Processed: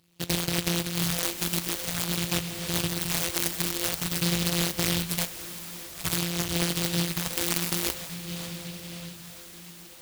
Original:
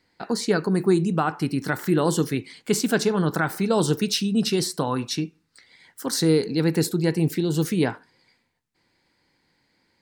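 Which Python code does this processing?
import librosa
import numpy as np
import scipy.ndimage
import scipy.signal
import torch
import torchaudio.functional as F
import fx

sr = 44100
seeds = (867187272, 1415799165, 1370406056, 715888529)

p1 = np.r_[np.sort(x[:len(x) // 256 * 256].reshape(-1, 256), axis=1).ravel(), x[len(x) // 256 * 256:]]
p2 = fx.dynamic_eq(p1, sr, hz=230.0, q=0.85, threshold_db=-34.0, ratio=4.0, max_db=-5)
p3 = scipy.signal.sosfilt(scipy.signal.butter(2, 77.0, 'highpass', fs=sr, output='sos'), p2)
p4 = fx.high_shelf(p3, sr, hz=4100.0, db=9.5)
p5 = p4 + fx.echo_diffused(p4, sr, ms=574, feedback_pct=67, wet_db=-14.5, dry=0)
p6 = fx.over_compress(p5, sr, threshold_db=-25.0, ratio=-1.0)
p7 = fx.phaser_stages(p6, sr, stages=4, low_hz=100.0, high_hz=4200.0, hz=0.49, feedback_pct=25)
y = fx.noise_mod_delay(p7, sr, seeds[0], noise_hz=3300.0, depth_ms=0.34)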